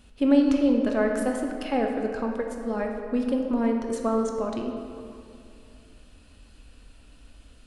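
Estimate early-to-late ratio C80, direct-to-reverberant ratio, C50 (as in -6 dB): 5.0 dB, 2.0 dB, 3.5 dB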